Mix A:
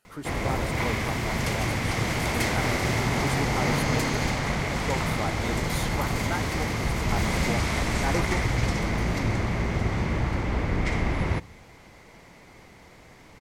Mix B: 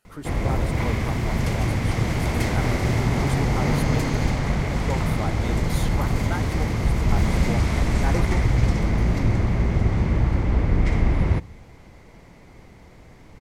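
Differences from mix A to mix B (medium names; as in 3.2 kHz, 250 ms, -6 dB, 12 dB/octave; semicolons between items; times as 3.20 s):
background: add tilt shelf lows +3.5 dB, about 680 Hz; master: add bass shelf 91 Hz +6.5 dB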